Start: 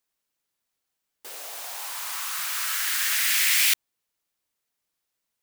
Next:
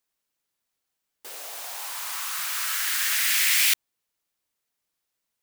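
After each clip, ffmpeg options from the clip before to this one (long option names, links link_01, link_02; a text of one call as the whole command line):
ffmpeg -i in.wav -af anull out.wav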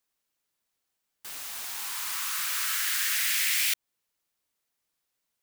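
ffmpeg -i in.wav -filter_complex "[0:a]acrossover=split=870[link_01][link_02];[link_01]aeval=exprs='(mod(316*val(0)+1,2)-1)/316':channel_layout=same[link_03];[link_03][link_02]amix=inputs=2:normalize=0,acompressor=threshold=-25dB:ratio=2.5" out.wav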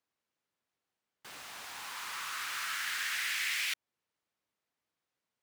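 ffmpeg -i in.wav -af "highpass=72,aemphasis=mode=reproduction:type=75kf" out.wav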